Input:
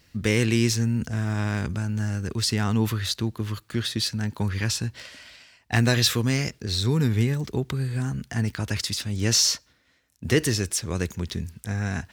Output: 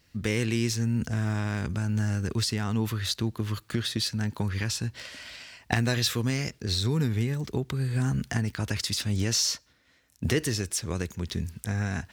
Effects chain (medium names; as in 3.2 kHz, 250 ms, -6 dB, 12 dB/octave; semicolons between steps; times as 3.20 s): recorder AGC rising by 14 dB/s; trim -5.5 dB